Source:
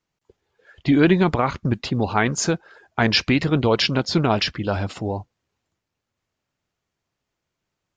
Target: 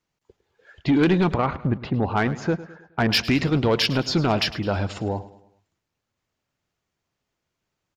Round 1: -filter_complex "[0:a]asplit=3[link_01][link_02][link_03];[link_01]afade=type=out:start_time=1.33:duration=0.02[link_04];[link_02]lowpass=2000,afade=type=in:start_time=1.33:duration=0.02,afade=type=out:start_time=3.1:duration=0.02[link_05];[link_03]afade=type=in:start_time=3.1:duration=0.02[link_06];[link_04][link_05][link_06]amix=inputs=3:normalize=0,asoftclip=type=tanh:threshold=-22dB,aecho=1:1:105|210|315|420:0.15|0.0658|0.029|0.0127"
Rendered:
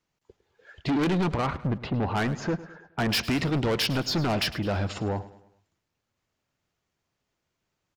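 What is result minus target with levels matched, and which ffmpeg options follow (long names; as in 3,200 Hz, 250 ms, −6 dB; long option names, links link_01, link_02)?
soft clipping: distortion +9 dB
-filter_complex "[0:a]asplit=3[link_01][link_02][link_03];[link_01]afade=type=out:start_time=1.33:duration=0.02[link_04];[link_02]lowpass=2000,afade=type=in:start_time=1.33:duration=0.02,afade=type=out:start_time=3.1:duration=0.02[link_05];[link_03]afade=type=in:start_time=3.1:duration=0.02[link_06];[link_04][link_05][link_06]amix=inputs=3:normalize=0,asoftclip=type=tanh:threshold=-12dB,aecho=1:1:105|210|315|420:0.15|0.0658|0.029|0.0127"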